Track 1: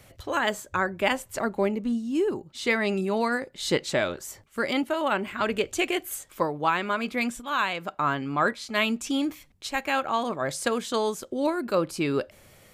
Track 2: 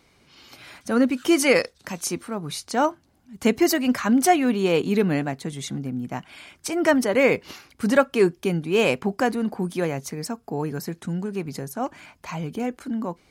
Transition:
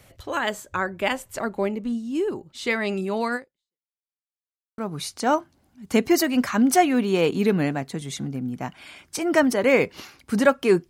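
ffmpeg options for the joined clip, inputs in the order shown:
-filter_complex "[0:a]apad=whole_dur=10.89,atrim=end=10.89,asplit=2[s0][s1];[s0]atrim=end=3.87,asetpts=PTS-STARTPTS,afade=t=out:st=3.36:d=0.51:c=exp[s2];[s1]atrim=start=3.87:end=4.78,asetpts=PTS-STARTPTS,volume=0[s3];[1:a]atrim=start=2.29:end=8.4,asetpts=PTS-STARTPTS,afade=t=in:d=0.004:c=hsin[s4];[s2][s3][s4]concat=n=3:v=0:a=1"

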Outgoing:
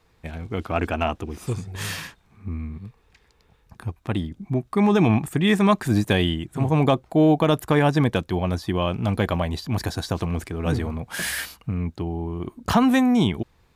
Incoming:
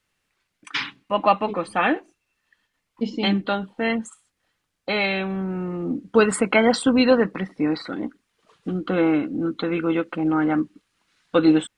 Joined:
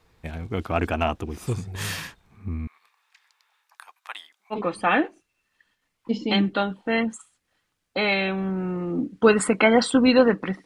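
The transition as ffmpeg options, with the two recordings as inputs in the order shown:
-filter_complex "[0:a]asettb=1/sr,asplit=3[s0][s1][s2];[s0]atrim=end=2.674[s3];[s1]atrim=start=2.67:end=4.56,asetpts=PTS-STARTPTS,afade=t=in:d=0.004:c=qsin,afade=t=out:st=1.886:d=0.004:c=qsin,highpass=f=940:w=0.5412,highpass=f=940:w=1.3066[s4];[s2]atrim=start=4.556[s5];[s3][s4]acrossfade=d=0.004:c1=hsin:c2=qsin[s6];[s6][s5]acrossfade=d=0.004:c1=qsin:c2=hsin,apad=whole_dur=10.65,atrim=end=10.65,atrim=end=4.56,asetpts=PTS-STARTPTS[s7];[1:a]atrim=start=1.42:end=7.57,asetpts=PTS-STARTPTS[s8];[s7][s8]acrossfade=d=0.06:c1=tri:c2=tri"

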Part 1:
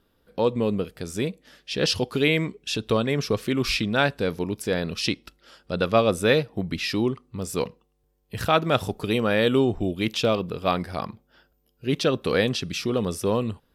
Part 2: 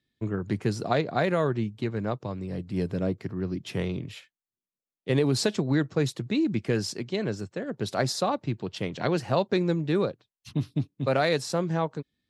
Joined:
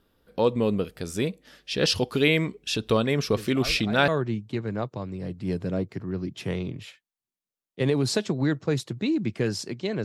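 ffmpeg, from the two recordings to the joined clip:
-filter_complex "[1:a]asplit=2[s0][s1];[0:a]apad=whole_dur=10.04,atrim=end=10.04,atrim=end=4.082[s2];[s1]atrim=start=1.368:end=7.33[s3];[s0]atrim=start=0.65:end=1.37,asetpts=PTS-STARTPTS,volume=0.224,afade=t=in:d=0.004:c=hsin,afade=t=out:st=0.716:d=0.004:c=hsin,adelay=3360[s4];[s2][s3]acrossfade=d=0.004:c1=hsin:c2=hsin[s5];[s5][s4]amix=inputs=2:normalize=0"

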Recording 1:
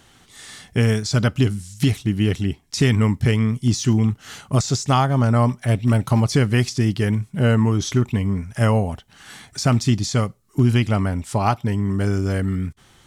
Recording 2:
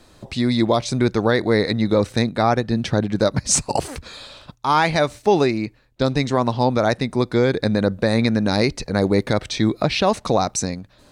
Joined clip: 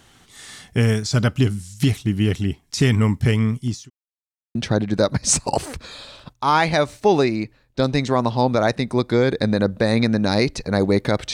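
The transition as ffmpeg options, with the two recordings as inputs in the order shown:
-filter_complex "[0:a]apad=whole_dur=11.33,atrim=end=11.33,asplit=2[s0][s1];[s0]atrim=end=3.9,asetpts=PTS-STARTPTS,afade=t=out:st=3.49:d=0.41[s2];[s1]atrim=start=3.9:end=4.55,asetpts=PTS-STARTPTS,volume=0[s3];[1:a]atrim=start=2.77:end=9.55,asetpts=PTS-STARTPTS,afade=t=in:d=0.004:c=hsin[s4];[s2][s3][s4]concat=n=3:v=0:a=1"

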